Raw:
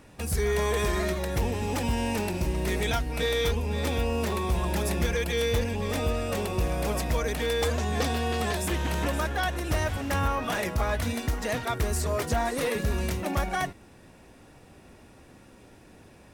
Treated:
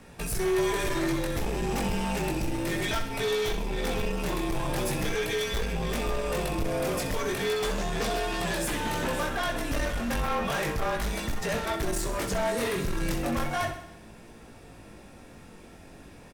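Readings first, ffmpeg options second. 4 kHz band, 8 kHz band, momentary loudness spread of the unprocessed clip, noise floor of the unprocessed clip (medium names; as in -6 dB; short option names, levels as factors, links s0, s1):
0.0 dB, 0.0 dB, 3 LU, -53 dBFS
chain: -af "afreqshift=-40,flanger=delay=17.5:depth=4.6:speed=0.35,asoftclip=type=tanh:threshold=0.0299,aecho=1:1:64|128|192|256|320|384|448:0.316|0.18|0.103|0.0586|0.0334|0.019|0.0108,volume=2"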